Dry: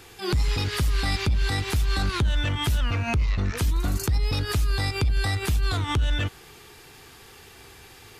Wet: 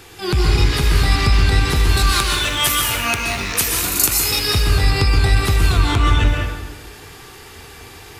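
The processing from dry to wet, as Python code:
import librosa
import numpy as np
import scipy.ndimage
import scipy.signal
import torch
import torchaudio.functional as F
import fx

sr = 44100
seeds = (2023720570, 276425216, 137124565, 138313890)

y = fx.rattle_buzz(x, sr, strikes_db=-30.0, level_db=-27.0)
y = fx.riaa(y, sr, side='recording', at=(1.97, 4.47))
y = fx.rev_plate(y, sr, seeds[0], rt60_s=1.3, hf_ratio=0.6, predelay_ms=110, drr_db=-1.0)
y = y * 10.0 ** (5.5 / 20.0)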